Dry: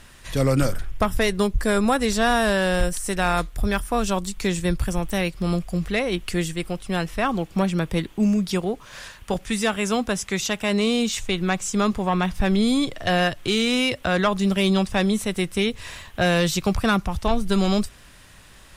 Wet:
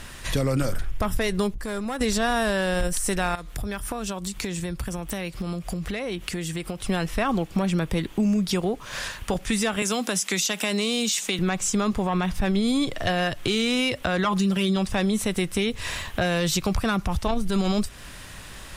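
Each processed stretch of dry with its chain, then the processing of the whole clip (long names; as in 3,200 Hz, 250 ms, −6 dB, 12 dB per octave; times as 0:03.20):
0:01.50–0:02.01: hard clipping −15.5 dBFS + downward compressor 16 to 1, threshold −33 dBFS
0:03.35–0:06.83: high-pass filter 44 Hz + downward compressor 8 to 1, threshold −33 dBFS
0:09.82–0:11.39: high-shelf EQ 2,600 Hz +10.5 dB + downward compressor 4 to 1, threshold −23 dBFS + elliptic high-pass filter 170 Hz
0:14.24–0:14.76: high-pass filter 93 Hz 6 dB per octave + comb filter 5.8 ms, depth 81%
whole clip: brickwall limiter −16 dBFS; downward compressor 2 to 1, threshold −33 dBFS; level +7.5 dB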